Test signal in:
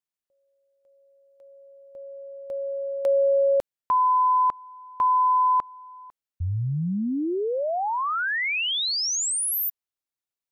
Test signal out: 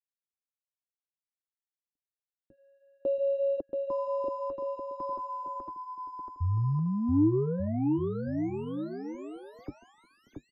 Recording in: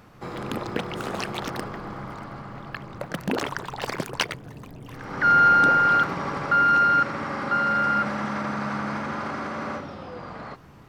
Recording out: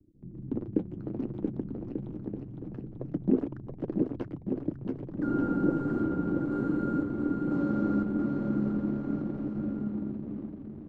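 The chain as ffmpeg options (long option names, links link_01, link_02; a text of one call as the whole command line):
ffmpeg -i in.wav -filter_complex "[0:a]acrossover=split=190[link_01][link_02];[link_01]aeval=exprs='sgn(val(0))*max(abs(val(0))-0.00119,0)':channel_layout=same[link_03];[link_02]acrusher=bits=3:mix=0:aa=0.5[link_04];[link_03][link_04]amix=inputs=2:normalize=0,flanger=delay=2.7:depth=8.3:regen=-42:speed=0.56:shape=triangular,lowpass=frequency=310:width_type=q:width=3.5,crystalizer=i=4.5:c=0,asplit=2[link_05][link_06];[link_06]aecho=0:1:680|1190|1572|1859|2075:0.631|0.398|0.251|0.158|0.1[link_07];[link_05][link_07]amix=inputs=2:normalize=0,volume=1.5dB" out.wav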